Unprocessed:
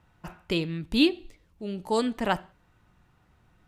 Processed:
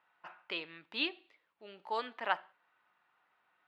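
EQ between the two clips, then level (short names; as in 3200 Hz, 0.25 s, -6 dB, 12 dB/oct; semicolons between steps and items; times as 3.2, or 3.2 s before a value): HPF 970 Hz 12 dB/oct; air absorption 340 m; 0.0 dB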